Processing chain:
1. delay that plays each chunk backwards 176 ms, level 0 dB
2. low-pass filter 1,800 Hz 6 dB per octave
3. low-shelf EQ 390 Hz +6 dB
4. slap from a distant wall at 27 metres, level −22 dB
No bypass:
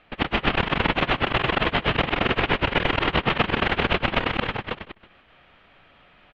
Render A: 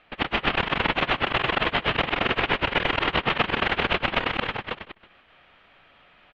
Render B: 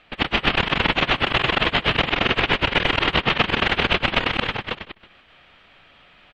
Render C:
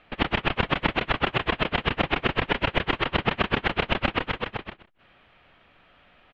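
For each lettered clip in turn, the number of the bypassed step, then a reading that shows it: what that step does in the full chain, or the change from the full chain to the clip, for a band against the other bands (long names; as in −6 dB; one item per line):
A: 3, 125 Hz band −4.5 dB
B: 2, change in integrated loudness +3.0 LU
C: 1, change in crest factor +1.5 dB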